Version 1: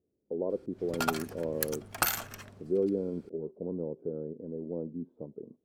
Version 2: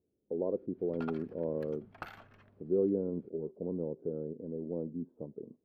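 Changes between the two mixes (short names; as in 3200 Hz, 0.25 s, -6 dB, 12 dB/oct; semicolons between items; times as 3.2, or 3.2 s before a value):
background -11.5 dB; master: add air absorption 390 m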